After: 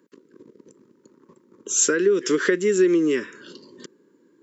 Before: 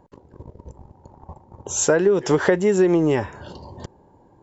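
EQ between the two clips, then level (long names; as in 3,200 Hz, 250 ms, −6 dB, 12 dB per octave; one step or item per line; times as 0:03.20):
high-pass filter 230 Hz 24 dB per octave
Chebyshev band-stop filter 400–1,400 Hz, order 2
high-shelf EQ 3,800 Hz +5.5 dB
0.0 dB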